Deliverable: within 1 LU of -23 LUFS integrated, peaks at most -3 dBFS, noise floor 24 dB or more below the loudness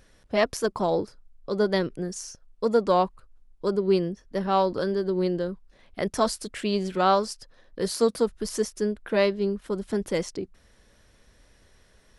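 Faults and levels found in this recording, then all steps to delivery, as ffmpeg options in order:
loudness -26.5 LUFS; peak -8.0 dBFS; loudness target -23.0 LUFS
-> -af "volume=3.5dB"

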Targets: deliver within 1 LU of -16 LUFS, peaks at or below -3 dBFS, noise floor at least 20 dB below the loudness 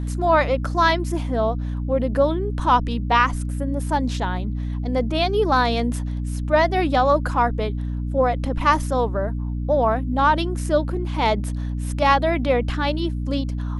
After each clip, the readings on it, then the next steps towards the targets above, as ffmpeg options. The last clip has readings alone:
hum 60 Hz; harmonics up to 300 Hz; hum level -23 dBFS; loudness -21.5 LUFS; peak -4.0 dBFS; loudness target -16.0 LUFS
-> -af "bandreject=f=60:t=h:w=4,bandreject=f=120:t=h:w=4,bandreject=f=180:t=h:w=4,bandreject=f=240:t=h:w=4,bandreject=f=300:t=h:w=4"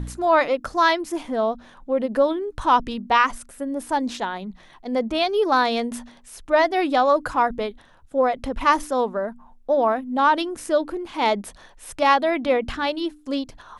hum none; loudness -22.0 LUFS; peak -4.5 dBFS; loudness target -16.0 LUFS
-> -af "volume=6dB,alimiter=limit=-3dB:level=0:latency=1"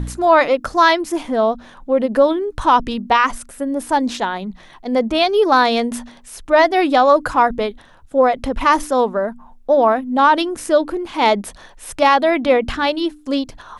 loudness -16.5 LUFS; peak -3.0 dBFS; noise floor -45 dBFS

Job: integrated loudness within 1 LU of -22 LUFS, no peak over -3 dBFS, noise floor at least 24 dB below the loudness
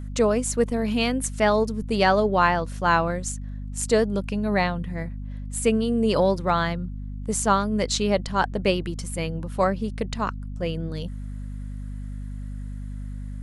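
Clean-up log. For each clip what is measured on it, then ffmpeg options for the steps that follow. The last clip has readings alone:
hum 50 Hz; harmonics up to 250 Hz; hum level -30 dBFS; loudness -24.0 LUFS; peak -6.5 dBFS; loudness target -22.0 LUFS
-> -af "bandreject=f=50:t=h:w=6,bandreject=f=100:t=h:w=6,bandreject=f=150:t=h:w=6,bandreject=f=200:t=h:w=6,bandreject=f=250:t=h:w=6"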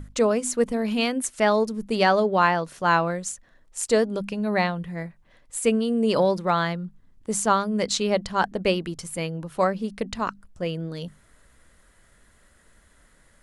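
hum none; loudness -24.5 LUFS; peak -6.5 dBFS; loudness target -22.0 LUFS
-> -af "volume=2.5dB"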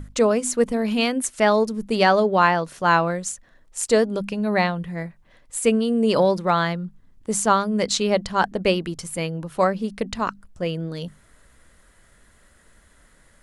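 loudness -22.0 LUFS; peak -4.0 dBFS; noise floor -56 dBFS

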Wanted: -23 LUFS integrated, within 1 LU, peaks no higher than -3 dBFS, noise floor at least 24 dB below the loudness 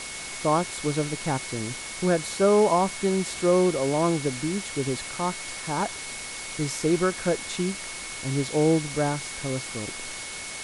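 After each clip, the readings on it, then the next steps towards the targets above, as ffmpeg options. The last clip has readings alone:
steady tone 2200 Hz; tone level -40 dBFS; noise floor -36 dBFS; noise floor target -50 dBFS; loudness -26.0 LUFS; peak -9.5 dBFS; loudness target -23.0 LUFS
-> -af "bandreject=f=2.2k:w=30"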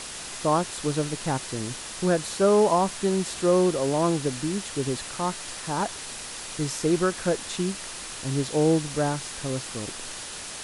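steady tone none; noise floor -38 dBFS; noise floor target -51 dBFS
-> -af "afftdn=nr=13:nf=-38"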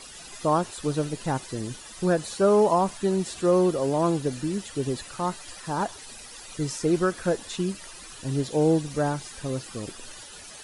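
noise floor -44 dBFS; noise floor target -50 dBFS
-> -af "afftdn=nr=6:nf=-44"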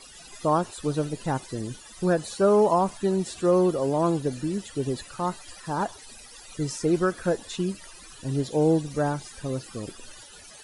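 noise floor -47 dBFS; noise floor target -50 dBFS
-> -af "afftdn=nr=6:nf=-47"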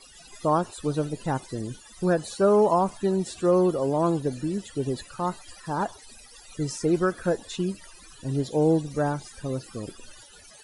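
noise floor -50 dBFS; loudness -26.0 LUFS; peak -10.0 dBFS; loudness target -23.0 LUFS
-> -af "volume=3dB"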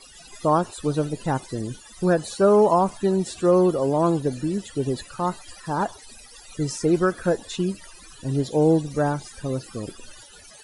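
loudness -23.0 LUFS; peak -7.0 dBFS; noise floor -47 dBFS

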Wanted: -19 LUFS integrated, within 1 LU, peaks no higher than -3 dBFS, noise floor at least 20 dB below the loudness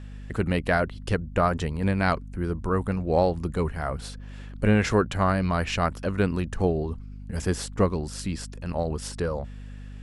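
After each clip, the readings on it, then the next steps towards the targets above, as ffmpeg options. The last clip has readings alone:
hum 50 Hz; harmonics up to 250 Hz; hum level -38 dBFS; loudness -26.5 LUFS; peak -8.0 dBFS; loudness target -19.0 LUFS
-> -af "bandreject=f=50:t=h:w=6,bandreject=f=100:t=h:w=6,bandreject=f=150:t=h:w=6,bandreject=f=200:t=h:w=6,bandreject=f=250:t=h:w=6"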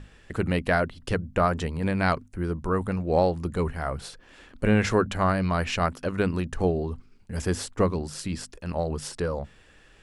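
hum none; loudness -27.0 LUFS; peak -9.0 dBFS; loudness target -19.0 LUFS
-> -af "volume=8dB,alimiter=limit=-3dB:level=0:latency=1"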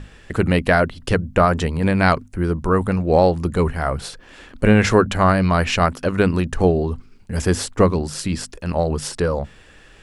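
loudness -19.5 LUFS; peak -3.0 dBFS; noise floor -47 dBFS

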